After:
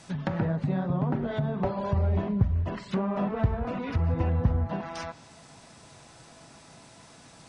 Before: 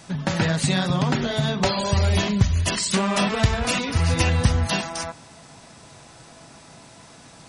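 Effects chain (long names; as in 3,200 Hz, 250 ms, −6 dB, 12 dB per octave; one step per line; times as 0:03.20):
treble cut that deepens with the level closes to 900 Hz, closed at −19 dBFS
level −5 dB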